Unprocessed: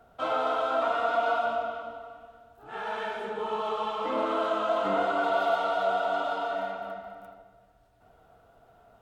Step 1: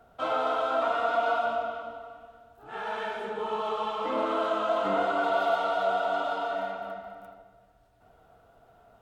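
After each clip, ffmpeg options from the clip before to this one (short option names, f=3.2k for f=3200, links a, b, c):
-af anull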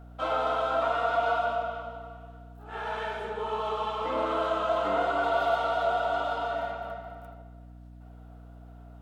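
-af "highpass=280,aeval=exprs='val(0)+0.00501*(sin(2*PI*60*n/s)+sin(2*PI*2*60*n/s)/2+sin(2*PI*3*60*n/s)/3+sin(2*PI*4*60*n/s)/4+sin(2*PI*5*60*n/s)/5)':c=same"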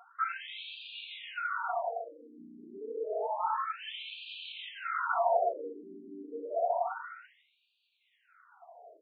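-filter_complex "[0:a]acompressor=threshold=-30dB:ratio=3,asplit=6[a][b][c][d][e][f];[b]adelay=140,afreqshift=31,volume=-11dB[g];[c]adelay=280,afreqshift=62,volume=-17.2dB[h];[d]adelay=420,afreqshift=93,volume=-23.4dB[i];[e]adelay=560,afreqshift=124,volume=-29.6dB[j];[f]adelay=700,afreqshift=155,volume=-35.8dB[k];[a][g][h][i][j][k]amix=inputs=6:normalize=0,afftfilt=real='re*between(b*sr/1024,280*pow(3400/280,0.5+0.5*sin(2*PI*0.29*pts/sr))/1.41,280*pow(3400/280,0.5+0.5*sin(2*PI*0.29*pts/sr))*1.41)':imag='im*between(b*sr/1024,280*pow(3400/280,0.5+0.5*sin(2*PI*0.29*pts/sr))/1.41,280*pow(3400/280,0.5+0.5*sin(2*PI*0.29*pts/sr))*1.41)':win_size=1024:overlap=0.75,volume=6dB"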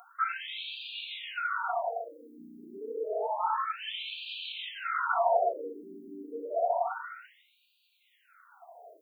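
-af "aemphasis=mode=production:type=50fm,volume=2dB"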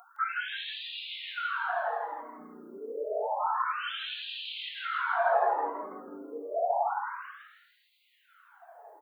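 -filter_complex "[0:a]asplit=6[a][b][c][d][e][f];[b]adelay=163,afreqshift=140,volume=-4dB[g];[c]adelay=326,afreqshift=280,volume=-12.6dB[h];[d]adelay=489,afreqshift=420,volume=-21.3dB[i];[e]adelay=652,afreqshift=560,volume=-29.9dB[j];[f]adelay=815,afreqshift=700,volume=-38.5dB[k];[a][g][h][i][j][k]amix=inputs=6:normalize=0,volume=-1dB"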